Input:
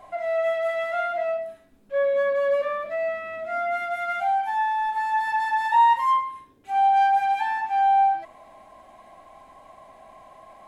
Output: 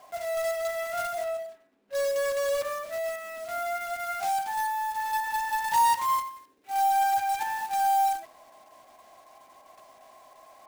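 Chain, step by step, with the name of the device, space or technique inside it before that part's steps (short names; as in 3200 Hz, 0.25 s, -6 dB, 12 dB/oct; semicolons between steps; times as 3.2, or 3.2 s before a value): early digital voice recorder (BPF 300–3400 Hz; block floating point 3-bit); 1.24–1.95 tone controls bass -1 dB, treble -8 dB; gain -5 dB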